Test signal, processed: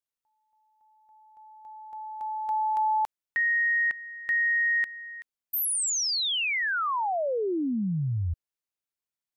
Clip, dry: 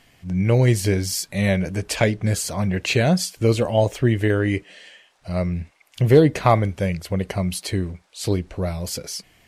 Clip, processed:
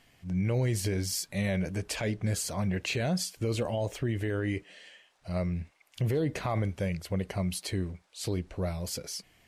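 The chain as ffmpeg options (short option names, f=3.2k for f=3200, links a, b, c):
-af "alimiter=limit=-14.5dB:level=0:latency=1:release=32,volume=-7dB"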